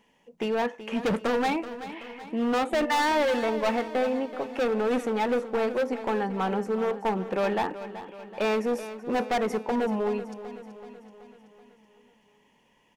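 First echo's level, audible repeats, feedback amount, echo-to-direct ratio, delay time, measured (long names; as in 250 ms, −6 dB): −13.0 dB, 5, 55%, −11.5 dB, 379 ms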